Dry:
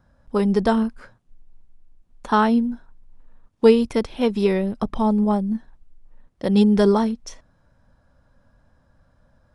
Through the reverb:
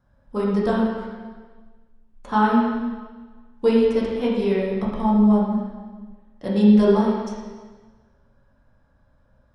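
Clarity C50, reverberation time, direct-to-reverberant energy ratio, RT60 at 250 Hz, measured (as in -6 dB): 0.0 dB, 1.4 s, -6.0 dB, 1.5 s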